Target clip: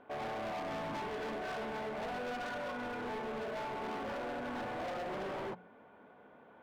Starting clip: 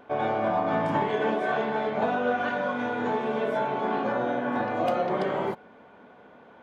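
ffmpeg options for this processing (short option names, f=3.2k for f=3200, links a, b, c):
-af "lowpass=3.2k,bandreject=f=60:t=h:w=6,bandreject=f=120:t=h:w=6,bandreject=f=180:t=h:w=6,bandreject=f=240:t=h:w=6,asoftclip=type=hard:threshold=-30.5dB,volume=-7dB"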